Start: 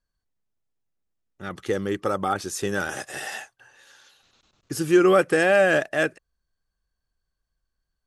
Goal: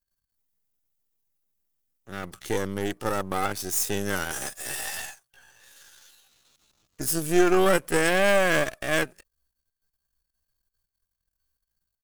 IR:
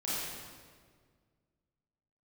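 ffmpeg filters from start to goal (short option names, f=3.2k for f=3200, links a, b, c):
-af "aeval=exprs='if(lt(val(0),0),0.251*val(0),val(0))':c=same,aemphasis=mode=production:type=50fm,atempo=0.67"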